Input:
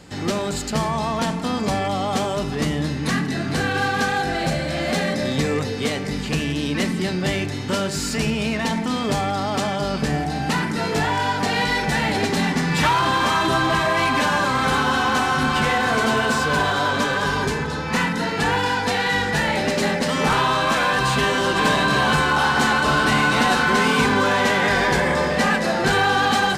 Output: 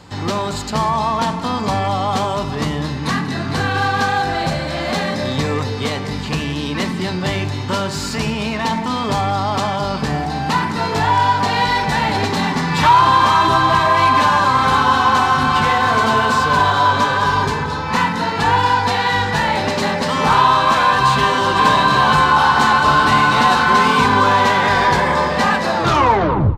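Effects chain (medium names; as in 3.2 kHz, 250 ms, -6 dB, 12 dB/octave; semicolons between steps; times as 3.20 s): tape stop on the ending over 0.80 s; fifteen-band graphic EQ 100 Hz +8 dB, 1 kHz +10 dB, 4 kHz +4 dB, 10 kHz -4 dB; delay 198 ms -17 dB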